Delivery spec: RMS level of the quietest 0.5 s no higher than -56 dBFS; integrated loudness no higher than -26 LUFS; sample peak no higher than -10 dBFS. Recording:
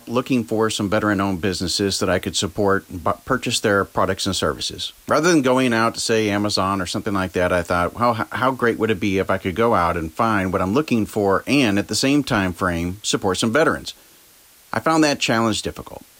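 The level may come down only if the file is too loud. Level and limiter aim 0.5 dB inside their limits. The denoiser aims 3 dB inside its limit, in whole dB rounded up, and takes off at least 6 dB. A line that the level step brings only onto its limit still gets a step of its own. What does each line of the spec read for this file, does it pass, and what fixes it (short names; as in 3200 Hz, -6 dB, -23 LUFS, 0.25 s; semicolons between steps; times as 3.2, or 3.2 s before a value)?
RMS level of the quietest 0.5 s -50 dBFS: fail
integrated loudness -20.0 LUFS: fail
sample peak -5.5 dBFS: fail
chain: gain -6.5 dB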